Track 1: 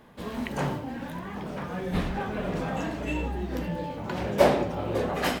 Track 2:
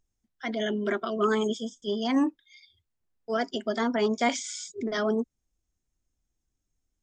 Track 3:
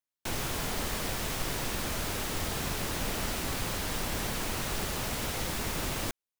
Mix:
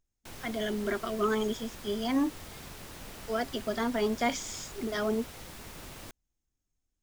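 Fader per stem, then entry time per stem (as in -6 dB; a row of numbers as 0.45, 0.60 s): off, -3.5 dB, -12.5 dB; off, 0.00 s, 0.00 s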